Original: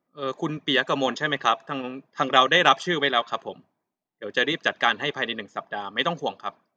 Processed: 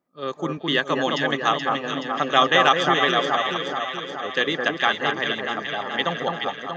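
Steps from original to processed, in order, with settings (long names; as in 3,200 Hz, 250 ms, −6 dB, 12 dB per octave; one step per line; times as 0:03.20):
delay that swaps between a low-pass and a high-pass 213 ms, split 1,600 Hz, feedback 78%, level −3 dB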